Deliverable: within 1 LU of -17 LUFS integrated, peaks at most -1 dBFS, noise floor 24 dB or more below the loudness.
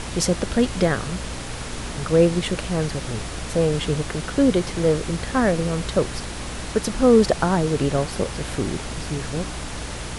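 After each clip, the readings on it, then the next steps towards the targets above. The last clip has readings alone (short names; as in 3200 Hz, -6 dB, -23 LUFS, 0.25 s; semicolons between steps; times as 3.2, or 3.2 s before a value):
hum 60 Hz; harmonics up to 300 Hz; hum level -33 dBFS; noise floor -32 dBFS; noise floor target -47 dBFS; loudness -23.0 LUFS; peak -4.0 dBFS; loudness target -17.0 LUFS
-> notches 60/120/180/240/300 Hz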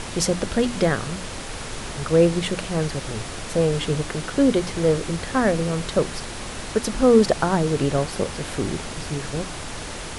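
hum none; noise floor -33 dBFS; noise floor target -47 dBFS
-> noise print and reduce 14 dB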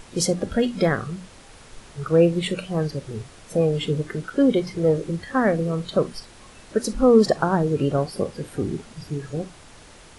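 noise floor -47 dBFS; loudness -23.0 LUFS; peak -4.5 dBFS; loudness target -17.0 LUFS
-> gain +6 dB; limiter -1 dBFS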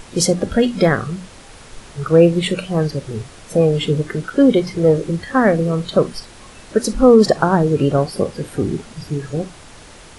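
loudness -17.0 LUFS; peak -1.0 dBFS; noise floor -41 dBFS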